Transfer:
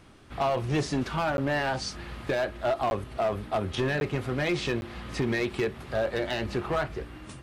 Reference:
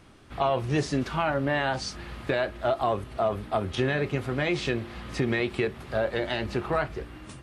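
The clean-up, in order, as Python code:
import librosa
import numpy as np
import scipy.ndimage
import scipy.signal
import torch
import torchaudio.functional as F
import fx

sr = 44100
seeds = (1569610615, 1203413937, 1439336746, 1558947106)

y = fx.fix_declip(x, sr, threshold_db=-21.0)
y = fx.fix_interpolate(y, sr, at_s=(1.37, 2.9, 4.0, 4.81), length_ms=11.0)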